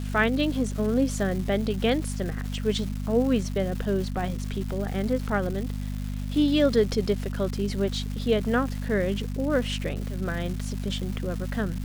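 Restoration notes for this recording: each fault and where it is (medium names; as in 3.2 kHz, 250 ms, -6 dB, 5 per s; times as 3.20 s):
crackle 510 per s -34 dBFS
hum 50 Hz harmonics 5 -31 dBFS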